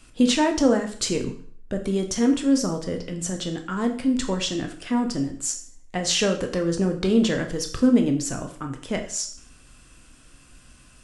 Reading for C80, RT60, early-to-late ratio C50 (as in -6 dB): 13.5 dB, 0.50 s, 10.5 dB